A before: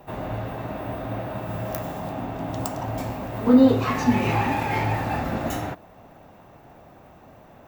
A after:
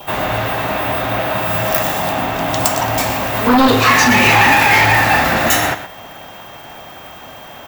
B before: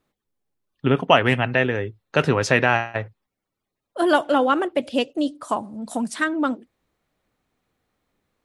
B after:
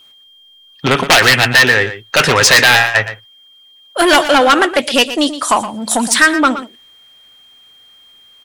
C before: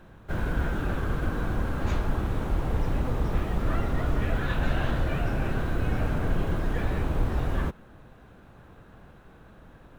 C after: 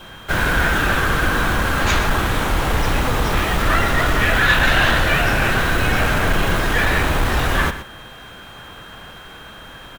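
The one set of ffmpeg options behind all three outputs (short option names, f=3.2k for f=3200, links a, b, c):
-af "adynamicequalizer=threshold=0.00562:dfrequency=1800:dqfactor=5.3:tfrequency=1800:tqfactor=5.3:attack=5:release=100:ratio=0.375:range=2:mode=boostabove:tftype=bell,aeval=exprs='0.944*sin(PI/2*3.55*val(0)/0.944)':c=same,tiltshelf=f=880:g=-8.5,asoftclip=type=tanh:threshold=-3.5dB,aeval=exprs='val(0)+0.00708*sin(2*PI*3200*n/s)':c=same,aecho=1:1:119:0.237"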